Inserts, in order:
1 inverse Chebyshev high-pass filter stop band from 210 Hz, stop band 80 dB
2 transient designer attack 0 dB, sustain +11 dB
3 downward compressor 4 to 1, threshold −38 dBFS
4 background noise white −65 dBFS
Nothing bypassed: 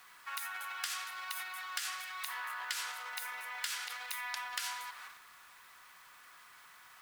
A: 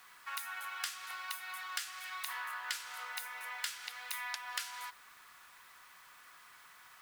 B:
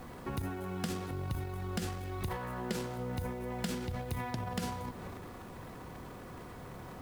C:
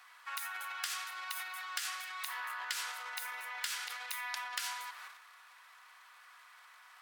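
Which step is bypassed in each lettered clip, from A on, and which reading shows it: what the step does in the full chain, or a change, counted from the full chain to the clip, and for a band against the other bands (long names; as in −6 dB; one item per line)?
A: 2, change in momentary loudness spread −1 LU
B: 1, 500 Hz band +29.5 dB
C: 4, change in momentary loudness spread +1 LU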